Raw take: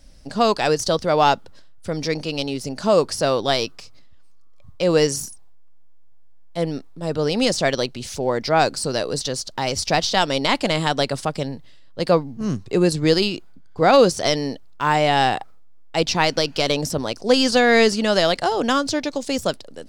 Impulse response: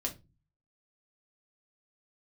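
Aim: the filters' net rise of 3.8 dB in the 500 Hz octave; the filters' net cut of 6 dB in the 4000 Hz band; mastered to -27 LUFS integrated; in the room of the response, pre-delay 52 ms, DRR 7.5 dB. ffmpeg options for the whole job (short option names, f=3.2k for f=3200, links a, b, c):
-filter_complex "[0:a]equalizer=f=500:t=o:g=4.5,equalizer=f=4k:t=o:g=-8,asplit=2[a][b];[1:a]atrim=start_sample=2205,adelay=52[c];[b][c]afir=irnorm=-1:irlink=0,volume=-9.5dB[d];[a][d]amix=inputs=2:normalize=0,volume=-9.5dB"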